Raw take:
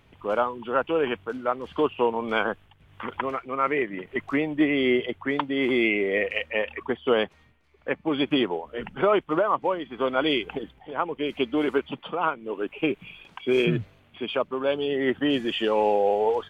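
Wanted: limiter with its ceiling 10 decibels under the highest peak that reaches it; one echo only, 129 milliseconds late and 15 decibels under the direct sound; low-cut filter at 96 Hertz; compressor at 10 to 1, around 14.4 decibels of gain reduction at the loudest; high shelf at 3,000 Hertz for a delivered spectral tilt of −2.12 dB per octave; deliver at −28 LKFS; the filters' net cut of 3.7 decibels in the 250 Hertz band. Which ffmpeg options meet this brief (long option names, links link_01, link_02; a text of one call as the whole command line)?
ffmpeg -i in.wav -af "highpass=96,equalizer=frequency=250:width_type=o:gain=-5,highshelf=frequency=3000:gain=4.5,acompressor=threshold=-33dB:ratio=10,alimiter=level_in=3.5dB:limit=-24dB:level=0:latency=1,volume=-3.5dB,aecho=1:1:129:0.178,volume=11dB" out.wav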